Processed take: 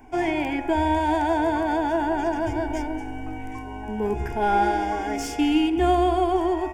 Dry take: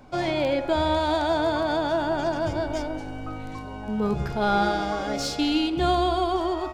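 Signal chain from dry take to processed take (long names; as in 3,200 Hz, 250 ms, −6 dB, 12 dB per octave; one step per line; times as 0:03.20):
phaser with its sweep stopped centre 830 Hz, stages 8
level +4 dB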